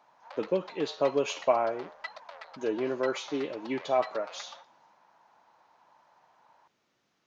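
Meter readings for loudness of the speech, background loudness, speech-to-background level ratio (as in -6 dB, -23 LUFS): -31.0 LUFS, -46.5 LUFS, 15.5 dB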